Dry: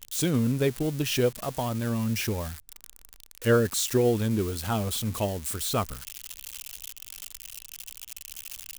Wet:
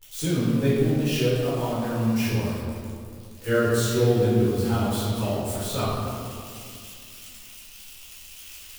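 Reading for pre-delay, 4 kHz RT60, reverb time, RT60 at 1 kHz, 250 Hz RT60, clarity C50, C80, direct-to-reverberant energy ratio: 6 ms, 1.3 s, 2.3 s, 2.2 s, 3.1 s, -2.5 dB, 0.0 dB, -10.5 dB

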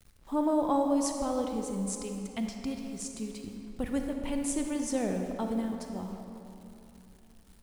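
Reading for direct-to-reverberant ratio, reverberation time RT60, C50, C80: 3.5 dB, 2.9 s, 4.0 dB, 5.0 dB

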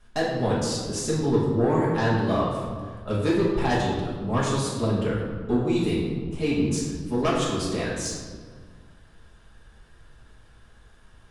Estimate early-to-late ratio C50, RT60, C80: 0.5 dB, 1.7 s, 3.0 dB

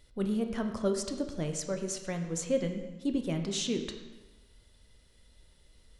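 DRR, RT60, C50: 5.0 dB, 1.1 s, 7.5 dB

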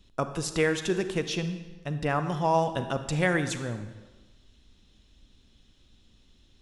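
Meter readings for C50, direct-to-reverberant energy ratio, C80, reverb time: 10.0 dB, 9.0 dB, 11.5 dB, 1.3 s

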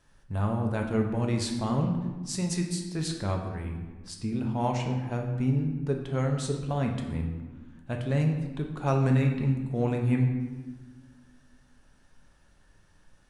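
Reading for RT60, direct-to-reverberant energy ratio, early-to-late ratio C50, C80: 1.4 s, 2.0 dB, 5.5 dB, 7.5 dB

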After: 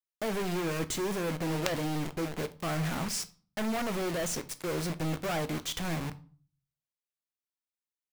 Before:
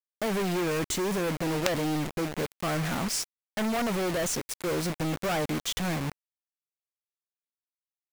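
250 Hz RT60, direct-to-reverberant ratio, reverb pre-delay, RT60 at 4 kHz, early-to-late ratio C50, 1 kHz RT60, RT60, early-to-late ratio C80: 0.60 s, 11.5 dB, 3 ms, 0.35 s, 18.5 dB, 0.45 s, 0.40 s, 23.0 dB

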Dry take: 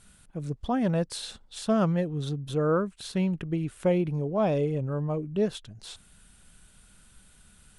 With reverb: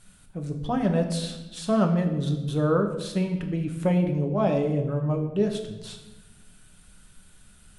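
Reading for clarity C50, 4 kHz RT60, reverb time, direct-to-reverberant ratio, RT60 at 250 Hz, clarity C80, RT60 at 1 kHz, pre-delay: 8.0 dB, 0.80 s, 1.0 s, 3.5 dB, 1.5 s, 10.0 dB, 0.90 s, 5 ms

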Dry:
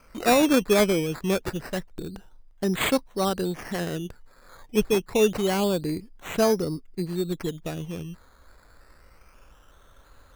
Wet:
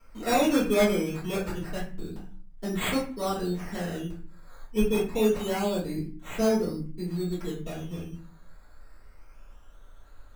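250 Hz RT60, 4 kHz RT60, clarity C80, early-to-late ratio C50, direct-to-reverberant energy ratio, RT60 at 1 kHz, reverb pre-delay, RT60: 0.65 s, 0.30 s, 11.0 dB, 6.0 dB, -10.0 dB, 0.40 s, 3 ms, 0.40 s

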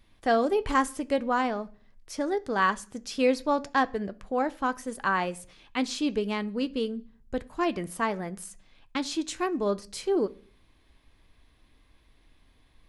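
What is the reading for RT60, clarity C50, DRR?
0.45 s, 22.0 dB, 10.5 dB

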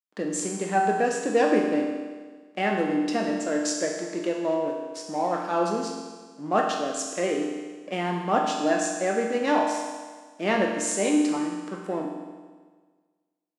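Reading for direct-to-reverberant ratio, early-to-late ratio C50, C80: -1.0 dB, 2.5 dB, 4.0 dB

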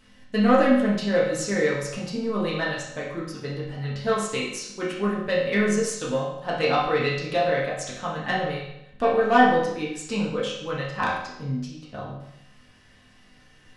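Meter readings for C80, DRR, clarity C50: 5.5 dB, -7.0 dB, 2.5 dB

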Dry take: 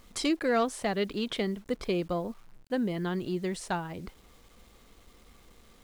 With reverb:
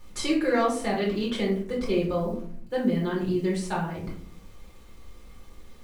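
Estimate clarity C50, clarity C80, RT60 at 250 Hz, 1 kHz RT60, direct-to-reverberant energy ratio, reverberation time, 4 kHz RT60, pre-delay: 6.0 dB, 10.5 dB, 0.95 s, 0.45 s, -5.0 dB, 0.55 s, 0.30 s, 5 ms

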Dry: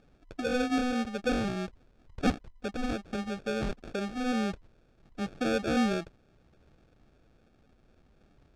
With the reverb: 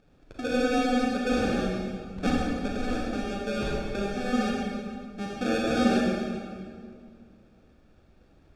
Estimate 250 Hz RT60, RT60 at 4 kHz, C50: 2.5 s, 1.6 s, -1.5 dB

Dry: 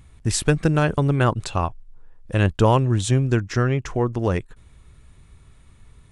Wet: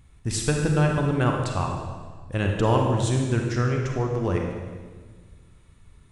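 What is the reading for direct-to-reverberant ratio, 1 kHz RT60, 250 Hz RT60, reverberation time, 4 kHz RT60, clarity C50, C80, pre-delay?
1.0 dB, 1.4 s, 1.9 s, 1.5 s, 1.4 s, 2.5 dB, 4.0 dB, 31 ms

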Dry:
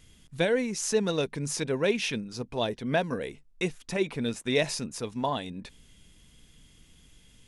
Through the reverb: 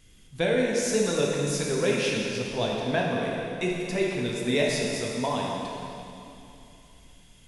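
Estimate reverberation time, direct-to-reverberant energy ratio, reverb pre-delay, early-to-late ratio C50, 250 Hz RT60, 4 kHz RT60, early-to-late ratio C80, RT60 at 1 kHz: 2.9 s, -2.5 dB, 6 ms, -0.5 dB, 2.9 s, 2.7 s, 1.0 dB, 2.9 s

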